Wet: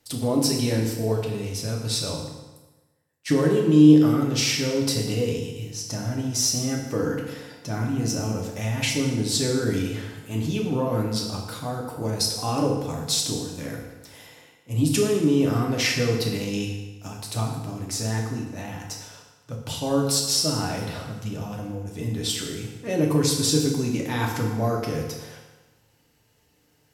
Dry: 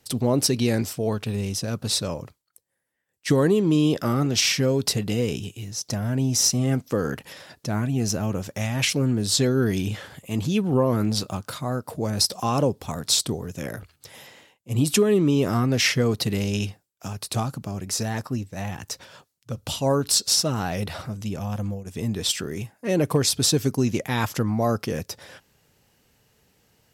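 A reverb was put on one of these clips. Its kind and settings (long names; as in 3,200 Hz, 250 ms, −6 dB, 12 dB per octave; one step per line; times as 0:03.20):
feedback delay network reverb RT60 1.2 s, low-frequency decay 0.95×, high-frequency decay 0.85×, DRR −1 dB
level −5 dB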